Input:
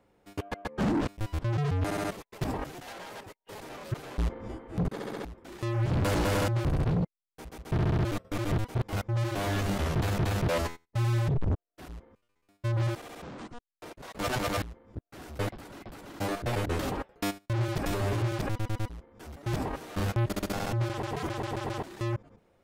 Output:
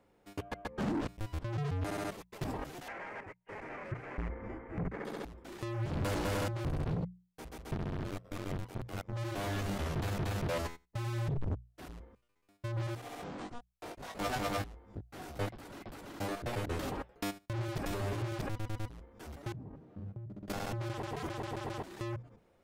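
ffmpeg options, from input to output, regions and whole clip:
-filter_complex "[0:a]asettb=1/sr,asplit=3[a][b][c];[a]atrim=end=2.884[d];[b]atrim=start=2.88:end=5.05,asetpts=PTS-STARTPTS,afade=t=in:d=0.004:c=qsin,afade=t=out:st=2.166:d=0.004:c=qsin,lowpass=6.2k,highshelf=f=2.8k:t=q:w=3:g=-9.5[e];[c]atrim=start=5.046[f];[d][e]acrossfade=d=0.004:c1=hsin:c2=qsin[g];[g][f]acrossfade=d=0.004:c1=qsin:c2=hsin,asettb=1/sr,asplit=3[h][i][j];[h]atrim=end=7.744[k];[i]atrim=start=7.74:end=9.13,asetpts=PTS-STARTPTS,afade=t=in:d=0.004:c=qsin,afade=t=out:st=1.386:d=0.004:c=qsin,acompressor=mode=upward:threshold=-37dB:ratio=2.5:attack=3.2:release=140:knee=2.83:detection=peak,tremolo=f=93:d=0.824[l];[j]atrim=start=9.126[m];[k][l]acrossfade=d=0.004:c1=hsin:c2=qsin[n];[n][m]acrossfade=d=0.004:c1=qsin:c2=hsin,asettb=1/sr,asplit=3[o][p][q];[o]atrim=end=13.014[r];[p]atrim=start=13.01:end=15.46,asetpts=PTS-STARTPTS,afade=t=in:d=0.004:c=qsin,afade=t=out:st=2.446:d=0.004:c=qsin,equalizer=f=740:w=7.7:g=6,asplit=2[s][t];[t]adelay=20,volume=-5dB[u];[s][u]amix=inputs=2:normalize=0,atrim=end_sample=108045[v];[q]atrim=start=15.456[w];[r][v]acrossfade=d=0.004:c1=hsin:c2=qsin[x];[x][w]acrossfade=d=0.004:c1=qsin:c2=hsin,asettb=1/sr,asplit=3[y][z][aa];[y]atrim=end=19.524[ab];[z]atrim=start=19.52:end=20.48,asetpts=PTS-STARTPTS,afade=t=in:d=0.004:c=qsin,afade=t=out:st=0.956:d=0.004:c=qsin,bandpass=f=140:t=q:w=1.4,acompressor=threshold=-42dB:ratio=2:attack=3.2:release=140:knee=1:detection=peak[ac];[aa]atrim=start=20.476[ad];[ab][ac]acrossfade=d=0.004:c1=hsin:c2=qsin[ae];[ae][ad]acrossfade=d=0.004:c1=qsin:c2=hsin,acompressor=threshold=-38dB:ratio=1.5,bandreject=f=60:t=h:w=6,bandreject=f=120:t=h:w=6,bandreject=f=180:t=h:w=6,volume=-2dB"

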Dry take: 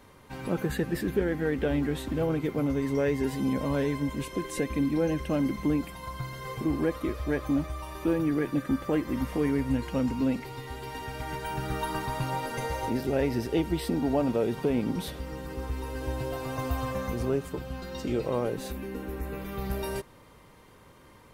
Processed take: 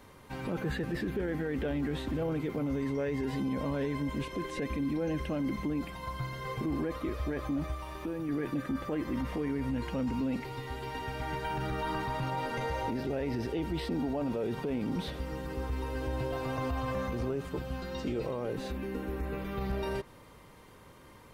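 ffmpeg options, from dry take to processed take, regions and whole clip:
-filter_complex "[0:a]asettb=1/sr,asplit=3[a][b][c];[a]atrim=end=7.744[d];[b]atrim=start=7.74:end=8.29,asetpts=PTS-STARTPTS,afade=t=in:d=0.004:c=qsin,afade=t=out:st=0.546:d=0.004:c=qsin,aeval=exprs='sgn(val(0))*max(abs(val(0))-0.00251,0)':c=same,acompressor=threshold=-35dB:ratio=3:attack=3.2:release=140:knee=1:detection=peak[e];[c]atrim=start=8.286[f];[d][e]acrossfade=d=0.004:c1=hsin:c2=qsin[g];[g][f]acrossfade=d=0.004:c1=qsin:c2=hsin,acrossover=split=4900[h][i];[i]acompressor=threshold=-59dB:ratio=4:attack=1:release=60[j];[h][j]amix=inputs=2:normalize=0,alimiter=level_in=1.5dB:limit=-24dB:level=0:latency=1:release=15,volume=-1.5dB"

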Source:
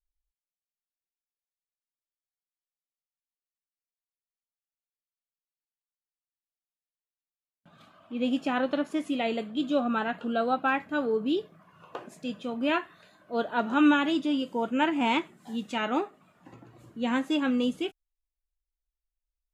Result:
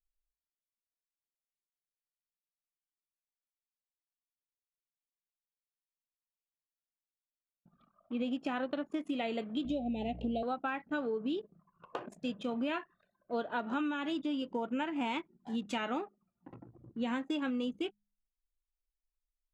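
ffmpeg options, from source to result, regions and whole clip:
-filter_complex "[0:a]asettb=1/sr,asplit=3[a][b][c];[a]atrim=end=9.654[d];[b]atrim=start=9.65:end=10.43,asetpts=PTS-STARTPTS,afade=t=in:d=0.004:c=qsin,afade=t=out:st=0.776:d=0.004:c=qsin,lowshelf=f=170:g=9,aeval=exprs='val(0)+0.00794*(sin(2*PI*60*n/s)+sin(2*PI*2*60*n/s)/2+sin(2*PI*3*60*n/s)/3+sin(2*PI*4*60*n/s)/4+sin(2*PI*5*60*n/s)/5)':c=same,asuperstop=centerf=1300:order=12:qfactor=1[e];[c]atrim=start=10.426[f];[d][e]acrossfade=d=0.004:c1=hsin:c2=qsin[g];[g][f]acrossfade=d=0.004:c1=qsin:c2=hsin,acompressor=threshold=-31dB:ratio=20,anlmdn=0.01,bandreject=f=51.46:t=h:w=4,bandreject=f=102.92:t=h:w=4,bandreject=f=154.38:t=h:w=4,bandreject=f=205.84:t=h:w=4"

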